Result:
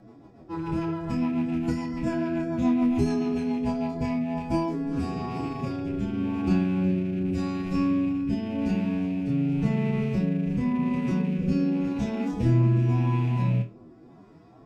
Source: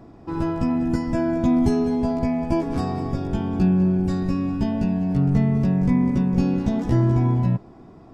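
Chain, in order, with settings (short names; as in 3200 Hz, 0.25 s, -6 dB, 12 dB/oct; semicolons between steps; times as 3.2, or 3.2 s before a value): rattling part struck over -25 dBFS, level -31 dBFS; low shelf 76 Hz -10 dB; time stretch by phase-locked vocoder 1.8×; rotary speaker horn 7 Hz, later 0.9 Hz, at 3.57; on a send: flutter echo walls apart 4.3 m, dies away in 0.22 s; on the sum: gain -2 dB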